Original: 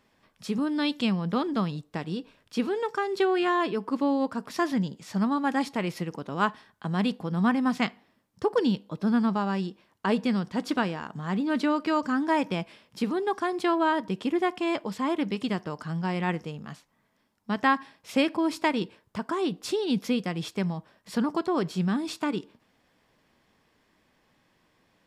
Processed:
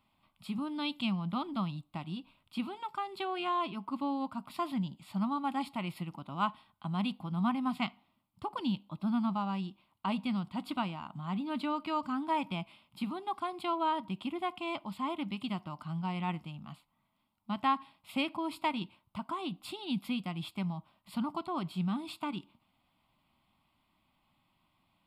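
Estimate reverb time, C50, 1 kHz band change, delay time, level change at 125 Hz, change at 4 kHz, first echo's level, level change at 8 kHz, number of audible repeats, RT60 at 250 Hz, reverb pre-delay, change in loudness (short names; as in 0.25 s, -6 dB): none, none, -5.0 dB, none, -6.0 dB, -5.0 dB, none, under -10 dB, none, none, none, -7.5 dB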